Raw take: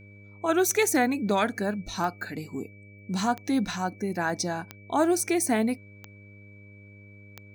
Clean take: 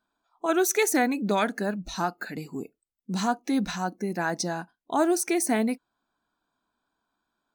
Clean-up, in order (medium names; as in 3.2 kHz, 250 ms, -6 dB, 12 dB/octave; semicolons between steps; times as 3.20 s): de-click; de-hum 101.3 Hz, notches 6; band-stop 2.3 kHz, Q 30